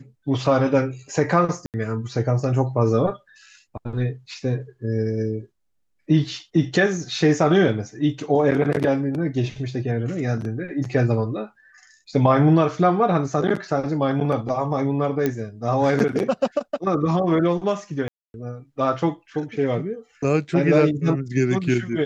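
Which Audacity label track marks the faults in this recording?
1.660000	1.740000	gap 78 ms
15.260000	15.260000	pop -10 dBFS
18.080000	18.340000	gap 0.261 s

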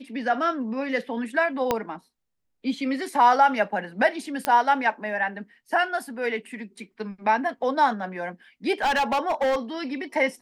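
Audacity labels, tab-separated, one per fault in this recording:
1.710000	1.710000	pop -8 dBFS
4.450000	4.450000	pop -9 dBFS
8.820000	9.560000	clipped -19.5 dBFS

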